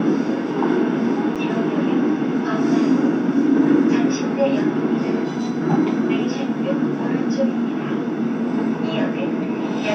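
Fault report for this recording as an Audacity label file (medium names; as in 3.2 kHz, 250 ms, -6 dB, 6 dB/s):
1.350000	1.360000	dropout 6.9 ms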